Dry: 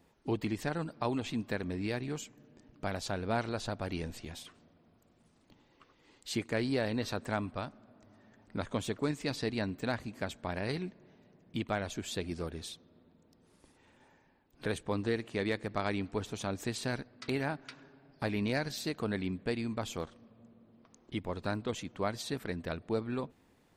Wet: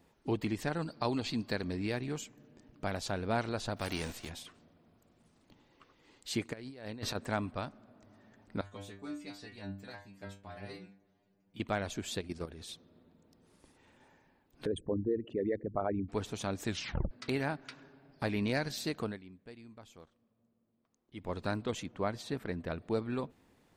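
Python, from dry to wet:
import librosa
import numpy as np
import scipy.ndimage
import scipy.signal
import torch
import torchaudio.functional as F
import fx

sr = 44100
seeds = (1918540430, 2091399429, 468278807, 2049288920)

y = fx.peak_eq(x, sr, hz=4500.0, db=14.0, octaves=0.24, at=(0.82, 1.77))
y = fx.envelope_flatten(y, sr, power=0.6, at=(3.76, 4.28), fade=0.02)
y = fx.over_compress(y, sr, threshold_db=-38.0, ratio=-0.5, at=(6.52, 7.14), fade=0.02)
y = fx.stiff_resonator(y, sr, f0_hz=97.0, decay_s=0.45, stiffness=0.002, at=(8.61, 11.6))
y = fx.level_steps(y, sr, step_db=12, at=(12.19, 12.69))
y = fx.envelope_sharpen(y, sr, power=3.0, at=(14.65, 16.08), fade=0.02)
y = fx.high_shelf(y, sr, hz=3200.0, db=-8.5, at=(21.86, 22.78))
y = fx.edit(y, sr, fx.tape_stop(start_s=16.66, length_s=0.45),
    fx.fade_down_up(start_s=19.01, length_s=2.3, db=-17.0, fade_s=0.18), tone=tone)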